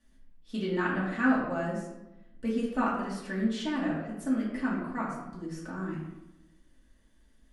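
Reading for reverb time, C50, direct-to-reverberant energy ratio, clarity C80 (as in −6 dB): 0.95 s, 2.0 dB, −7.0 dB, 5.0 dB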